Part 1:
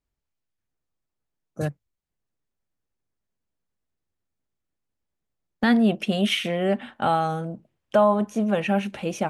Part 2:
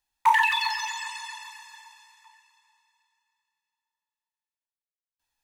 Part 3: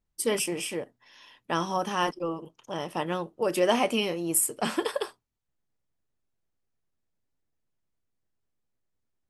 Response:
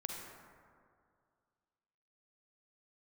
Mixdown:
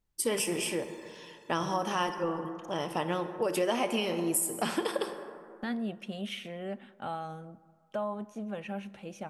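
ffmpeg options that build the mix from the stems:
-filter_complex "[0:a]volume=-16dB,asplit=2[link_01][link_02];[link_02]volume=-16dB[link_03];[1:a]volume=32.5dB,asoftclip=hard,volume=-32.5dB,volume=-19.5dB[link_04];[2:a]volume=-2.5dB,asplit=2[link_05][link_06];[link_06]volume=-3.5dB[link_07];[3:a]atrim=start_sample=2205[link_08];[link_03][link_07]amix=inputs=2:normalize=0[link_09];[link_09][link_08]afir=irnorm=-1:irlink=0[link_10];[link_01][link_04][link_05][link_10]amix=inputs=4:normalize=0,acompressor=threshold=-27dB:ratio=3"

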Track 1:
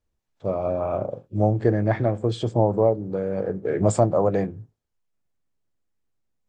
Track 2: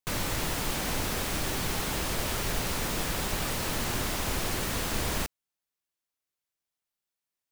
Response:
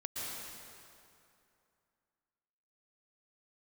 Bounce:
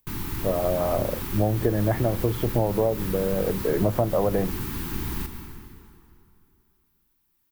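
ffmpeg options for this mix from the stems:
-filter_complex "[0:a]lowpass=2100,volume=1.5dB[link_01];[1:a]acompressor=mode=upward:threshold=-55dB:ratio=2.5,firequalizer=gain_entry='entry(370,0);entry(590,-29);entry(840,-6);entry(2000,-9);entry(7200,-12);entry(15000,2)':delay=0.05:min_phase=1,volume=-1dB,asplit=2[link_02][link_03];[link_03]volume=-5.5dB[link_04];[2:a]atrim=start_sample=2205[link_05];[link_04][link_05]afir=irnorm=-1:irlink=0[link_06];[link_01][link_02][link_06]amix=inputs=3:normalize=0,acompressor=threshold=-18dB:ratio=6"

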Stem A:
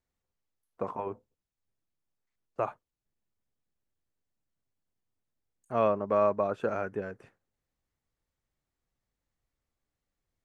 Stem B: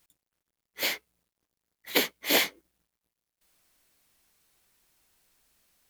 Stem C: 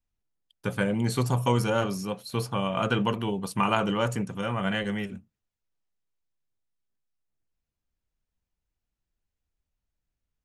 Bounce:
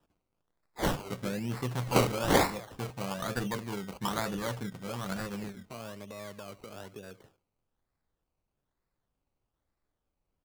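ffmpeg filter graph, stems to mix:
ffmpeg -i stem1.wav -i stem2.wav -i stem3.wav -filter_complex "[0:a]acrossover=split=200[link_01][link_02];[link_02]acompressor=threshold=-35dB:ratio=6[link_03];[link_01][link_03]amix=inputs=2:normalize=0,alimiter=level_in=11.5dB:limit=-24dB:level=0:latency=1:release=466,volume=-11.5dB,volume=1.5dB,asplit=2[link_04][link_05];[link_05]volume=-17.5dB[link_06];[1:a]lowpass=frequency=3200:width=0.5412,lowpass=frequency=3200:width=1.3066,highshelf=frequency=2100:gain=6,volume=0dB,asplit=2[link_07][link_08];[link_08]volume=-14dB[link_09];[2:a]adelay=450,volume=-8dB[link_10];[link_06][link_09]amix=inputs=2:normalize=0,aecho=0:1:70|140|210|280:1|0.29|0.0841|0.0244[link_11];[link_04][link_07][link_10][link_11]amix=inputs=4:normalize=0,acrusher=samples=20:mix=1:aa=0.000001:lfo=1:lforange=12:lforate=1.1" out.wav

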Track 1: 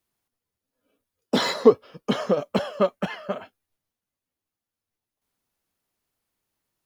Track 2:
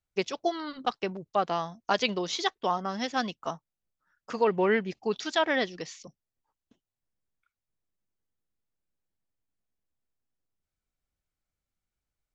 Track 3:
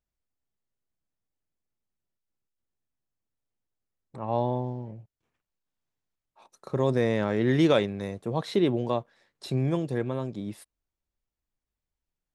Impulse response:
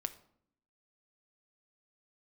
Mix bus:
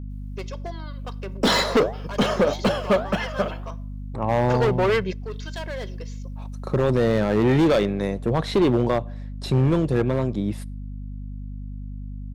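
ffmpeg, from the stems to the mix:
-filter_complex "[0:a]flanger=delay=7.1:depth=9.9:regen=-83:speed=1.6:shape=sinusoidal,adelay=100,volume=2dB,asplit=2[link_01][link_02];[link_02]volume=-15.5dB[link_03];[1:a]aecho=1:1:1.9:0.7,asoftclip=type=hard:threshold=-25dB,adelay=200,volume=-0.5dB,asplit=2[link_04][link_05];[link_05]volume=-17dB[link_06];[2:a]volume=0.5dB,asplit=3[link_07][link_08][link_09];[link_08]volume=-12dB[link_10];[link_09]apad=whole_len=553362[link_11];[link_04][link_11]sidechaingate=range=-17dB:threshold=-59dB:ratio=16:detection=peak[link_12];[link_12][link_07]amix=inputs=2:normalize=0,highshelf=frequency=4600:gain=-7.5,alimiter=limit=-16.5dB:level=0:latency=1:release=111,volume=0dB[link_13];[3:a]atrim=start_sample=2205[link_14];[link_03][link_06][link_10]amix=inputs=3:normalize=0[link_15];[link_15][link_14]afir=irnorm=-1:irlink=0[link_16];[link_01][link_13][link_16]amix=inputs=3:normalize=0,acontrast=74,aeval=exprs='val(0)+0.0251*(sin(2*PI*50*n/s)+sin(2*PI*2*50*n/s)/2+sin(2*PI*3*50*n/s)/3+sin(2*PI*4*50*n/s)/4+sin(2*PI*5*50*n/s)/5)':channel_layout=same,asoftclip=type=hard:threshold=-14dB"

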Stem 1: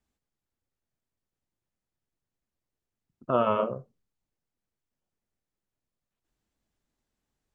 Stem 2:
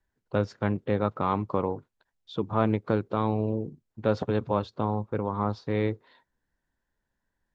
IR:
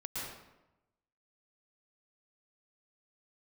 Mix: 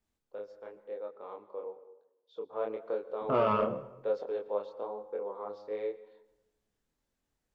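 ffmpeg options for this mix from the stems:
-filter_complex "[0:a]asoftclip=type=tanh:threshold=-16dB,volume=1.5dB,asplit=3[link_01][link_02][link_03];[link_01]atrim=end=1.05,asetpts=PTS-STARTPTS,afade=type=out:start_time=1.046:duration=0.004:curve=hsin[link_04];[link_02]atrim=start=1.05:end=2.7,asetpts=PTS-STARTPTS,volume=0[link_05];[link_03]atrim=start=2.7,asetpts=PTS-STARTPTS,afade=type=in:duration=0.004:curve=hsin[link_06];[link_04][link_05][link_06]concat=n=3:v=0:a=1,asplit=2[link_07][link_08];[link_08]volume=-18.5dB[link_09];[1:a]highpass=frequency=480:width_type=q:width=4.9,volume=-13dB,afade=type=in:start_time=2.15:duration=0.45:silence=0.421697,asplit=2[link_10][link_11];[link_11]volume=-15.5dB[link_12];[2:a]atrim=start_sample=2205[link_13];[link_09][link_12]amix=inputs=2:normalize=0[link_14];[link_14][link_13]afir=irnorm=-1:irlink=0[link_15];[link_07][link_10][link_15]amix=inputs=3:normalize=0,flanger=delay=22.5:depth=6.6:speed=0.98"

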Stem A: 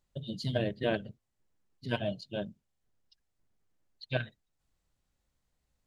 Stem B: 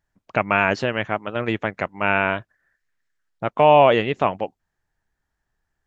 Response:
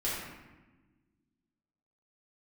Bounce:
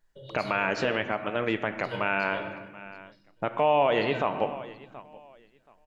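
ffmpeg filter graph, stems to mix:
-filter_complex "[0:a]aecho=1:1:2.1:0.91,acompressor=threshold=-39dB:ratio=2,volume=0dB,asplit=3[link_01][link_02][link_03];[link_02]volume=-7.5dB[link_04];[link_03]volume=-22dB[link_05];[1:a]volume=-1.5dB,asplit=4[link_06][link_07][link_08][link_09];[link_07]volume=-15.5dB[link_10];[link_08]volume=-23dB[link_11];[link_09]apad=whole_len=258735[link_12];[link_01][link_12]sidechaingate=range=-33dB:threshold=-44dB:ratio=16:detection=peak[link_13];[2:a]atrim=start_sample=2205[link_14];[link_04][link_10]amix=inputs=2:normalize=0[link_15];[link_15][link_14]afir=irnorm=-1:irlink=0[link_16];[link_05][link_11]amix=inputs=2:normalize=0,aecho=0:1:727|1454|2181:1|0.2|0.04[link_17];[link_13][link_06][link_16][link_17]amix=inputs=4:normalize=0,equalizer=frequency=71:width=0.73:gain=-8.5,alimiter=limit=-13dB:level=0:latency=1:release=153"

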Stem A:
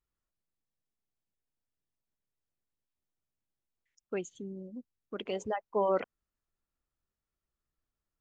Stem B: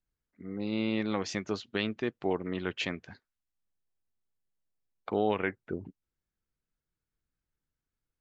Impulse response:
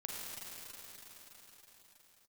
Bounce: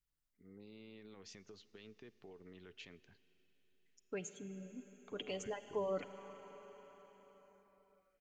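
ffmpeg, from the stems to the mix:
-filter_complex "[0:a]bandreject=frequency=1200:width=17,aecho=1:1:6.9:0.54,volume=-2.5dB,asplit=2[link_01][link_02];[link_02]volume=-9dB[link_03];[1:a]equalizer=frequency=430:width=6:gain=10.5,alimiter=limit=-23dB:level=0:latency=1,acompressor=threshold=-31dB:ratio=6,volume=-15dB,asplit=2[link_04][link_05];[link_05]volume=-17.5dB[link_06];[2:a]atrim=start_sample=2205[link_07];[link_03][link_06]amix=inputs=2:normalize=0[link_08];[link_08][link_07]afir=irnorm=-1:irlink=0[link_09];[link_01][link_04][link_09]amix=inputs=3:normalize=0,equalizer=frequency=580:width=0.34:gain=-7.5,acrossover=split=470|3000[link_10][link_11][link_12];[link_11]acompressor=threshold=-45dB:ratio=2.5[link_13];[link_10][link_13][link_12]amix=inputs=3:normalize=0"

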